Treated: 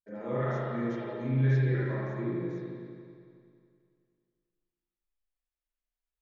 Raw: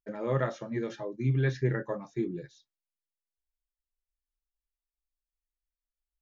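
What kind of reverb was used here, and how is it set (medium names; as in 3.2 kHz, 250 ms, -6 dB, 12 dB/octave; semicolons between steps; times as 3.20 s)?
spring tank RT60 2.3 s, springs 34/38 ms, chirp 55 ms, DRR -9.5 dB; trim -10 dB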